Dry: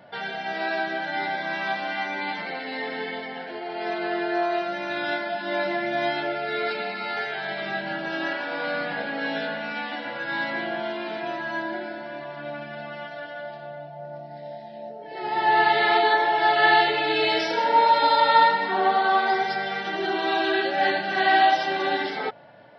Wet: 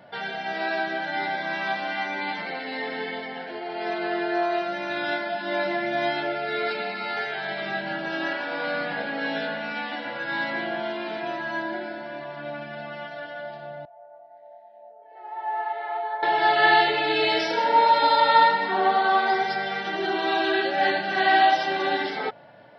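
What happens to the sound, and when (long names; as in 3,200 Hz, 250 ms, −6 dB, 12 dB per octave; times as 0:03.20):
0:13.85–0:16.23: four-pole ladder band-pass 880 Hz, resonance 35%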